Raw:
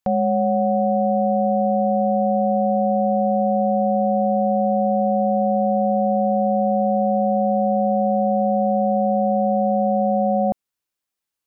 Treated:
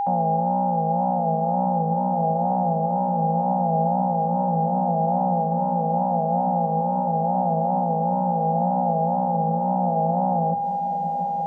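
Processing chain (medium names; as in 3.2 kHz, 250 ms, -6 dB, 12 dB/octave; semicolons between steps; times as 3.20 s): vocoder on a held chord bare fifth, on A#2; bass shelf 290 Hz -8 dB; reverse; upward compressor, threshold -38 dBFS; reverse; wow and flutter 120 cents; whistle 810 Hz -21 dBFS; on a send: echo that smears into a reverb 1069 ms, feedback 49%, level -11 dB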